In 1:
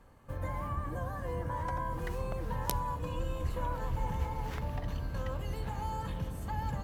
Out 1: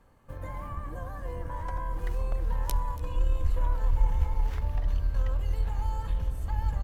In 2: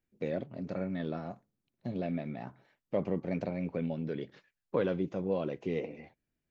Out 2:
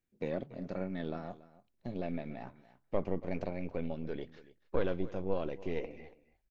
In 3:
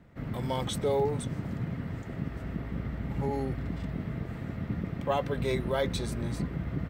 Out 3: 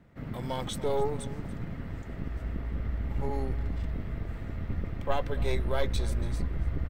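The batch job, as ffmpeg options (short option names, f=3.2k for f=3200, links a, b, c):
-af "aeval=exprs='0.473*(cos(1*acos(clip(val(0)/0.473,-1,1)))-cos(1*PI/2))+0.0422*(cos(6*acos(clip(val(0)/0.473,-1,1)))-cos(6*PI/2))':c=same,asubboost=boost=10:cutoff=51,aecho=1:1:283:0.119,volume=-2dB"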